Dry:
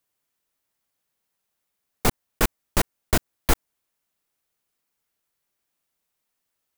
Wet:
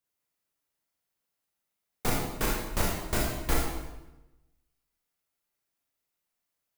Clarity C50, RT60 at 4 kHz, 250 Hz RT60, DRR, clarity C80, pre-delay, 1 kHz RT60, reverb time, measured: 0.5 dB, 0.85 s, 1.2 s, −3.5 dB, 3.0 dB, 27 ms, 0.95 s, 1.0 s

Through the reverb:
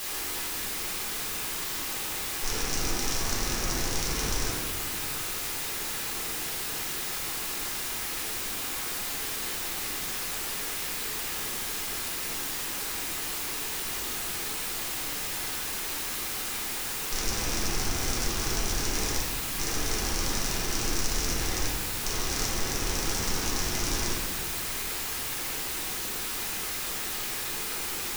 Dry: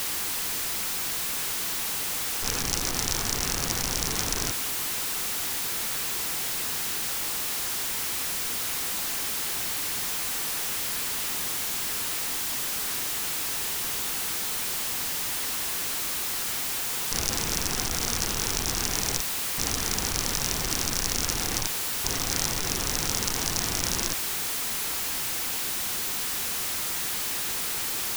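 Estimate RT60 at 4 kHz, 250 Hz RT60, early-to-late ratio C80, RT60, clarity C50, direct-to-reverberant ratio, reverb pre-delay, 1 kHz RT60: 0.95 s, 2.4 s, 3.5 dB, 1.5 s, 0.5 dB, −5.0 dB, 3 ms, 1.4 s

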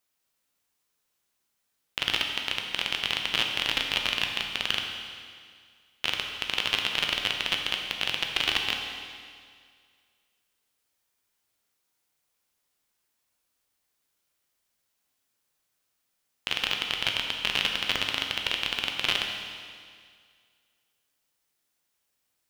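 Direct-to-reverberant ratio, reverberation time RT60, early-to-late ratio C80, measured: 2.0 dB, 2.0 s, 5.0 dB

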